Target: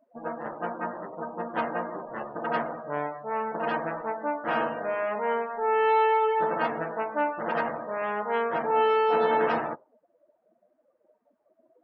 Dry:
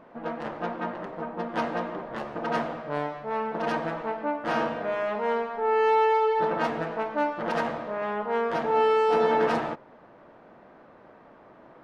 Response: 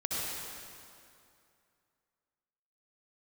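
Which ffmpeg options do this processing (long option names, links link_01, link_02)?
-filter_complex "[0:a]asettb=1/sr,asplit=3[link_01][link_02][link_03];[link_01]atrim=end=7.884[link_04];[link_02]atrim=start=7.88:end=8.43,asetpts=PTS-STARTPTS,afade=type=in:duration=0.004:curve=qsin,afade=type=out:start_time=0.546:duration=0.004:curve=qsin,highshelf=frequency=3900:gain=11[link_05];[link_03]atrim=start=8.426[link_06];[link_04][link_05]acrossfade=duration=0.004:curve1=hsin:curve2=qsin[link_07];[link_07][link_06]acrossfade=duration=0.004:curve1=qsin:curve2=hsin,afftdn=noise_reduction=30:noise_floor=-39,lowshelf=frequency=420:gain=-6.5,volume=1.5dB"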